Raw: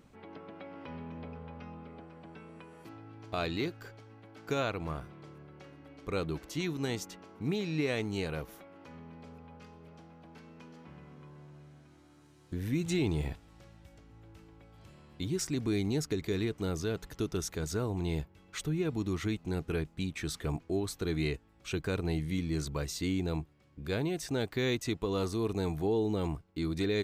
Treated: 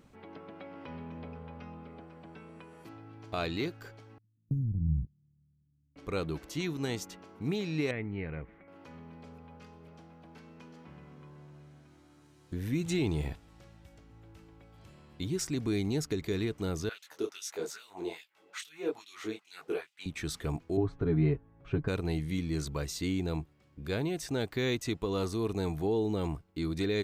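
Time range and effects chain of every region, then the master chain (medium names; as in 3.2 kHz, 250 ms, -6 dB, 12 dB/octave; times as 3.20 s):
4.18–5.96 s: inverse Chebyshev band-stop 620–4300 Hz, stop band 60 dB + tilt EQ -3.5 dB/octave + gate -35 dBFS, range -25 dB
7.91–8.68 s: four-pole ladder low-pass 2.3 kHz, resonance 65% + bass shelf 400 Hz +12 dB
16.89–20.06 s: bass shelf 220 Hz +6.5 dB + LFO high-pass sine 2.4 Hz 390–3200 Hz + detune thickener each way 50 cents
20.77–21.88 s: low-pass 1.3 kHz + bass shelf 170 Hz +7.5 dB + comb 7.2 ms, depth 75%
whole clip: none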